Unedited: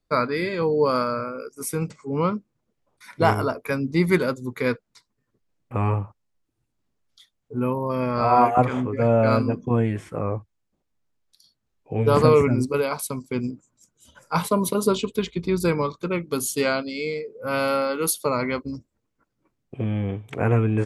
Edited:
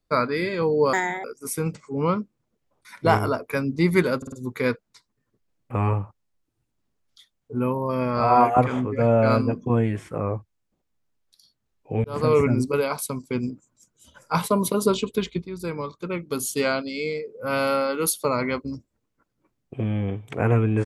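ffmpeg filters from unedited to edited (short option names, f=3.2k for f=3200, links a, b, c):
-filter_complex "[0:a]asplit=8[a][b][c][d][e][f][g][h];[a]atrim=end=0.934[i];[b]atrim=start=0.93:end=1.4,asetpts=PTS-STARTPTS,asetrate=66150,aresample=44100[j];[c]atrim=start=1.396:end=4.382[k];[d]atrim=start=4.328:end=4.382[l];[e]atrim=start=4.328:end=4.382[m];[f]atrim=start=4.328:end=12.05,asetpts=PTS-STARTPTS,afade=t=out:st=7.718:d=0.004:c=hsin[n];[g]atrim=start=12.05:end=15.43,asetpts=PTS-STARTPTS,afade=t=in:d=0.4,afade=t=out:st=3.376:d=0.004:c=hsin:silence=0.188365[o];[h]atrim=start=15.43,asetpts=PTS-STARTPTS,afade=t=in:d=1.73:c=qsin:silence=0.188365[p];[i][j]acrossfade=d=0.004:c1=hsin:c2=hsin[q];[q][k]acrossfade=d=0.004:c1=hsin:c2=hsin[r];[r][l]acrossfade=d=0.004:c1=hsin:c2=hsin[s];[s][m]acrossfade=d=0.004:c1=hsin:c2=hsin[t];[n][o][p]concat=n=3:v=0:a=1[u];[t][u]acrossfade=d=0.004:c1=hsin:c2=hsin"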